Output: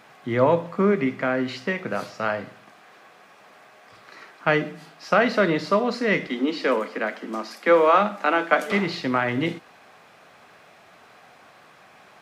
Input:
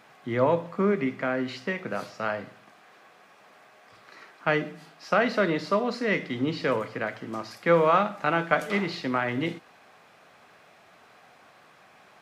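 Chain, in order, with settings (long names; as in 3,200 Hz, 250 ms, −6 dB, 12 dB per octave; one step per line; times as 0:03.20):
0:06.27–0:08.72: Butterworth high-pass 190 Hz 96 dB per octave
level +4 dB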